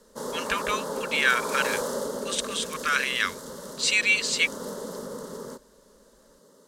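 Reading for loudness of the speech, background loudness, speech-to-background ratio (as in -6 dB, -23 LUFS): -25.5 LUFS, -34.0 LUFS, 8.5 dB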